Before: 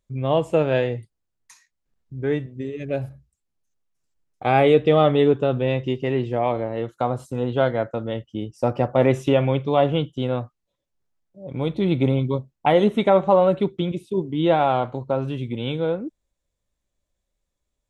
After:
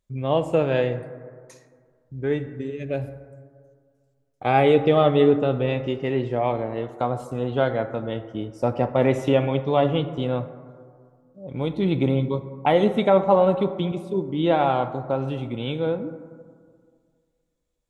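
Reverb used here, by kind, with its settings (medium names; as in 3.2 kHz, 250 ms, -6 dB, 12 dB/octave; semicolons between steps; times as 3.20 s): plate-style reverb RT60 2 s, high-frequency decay 0.3×, DRR 10.5 dB; trim -1.5 dB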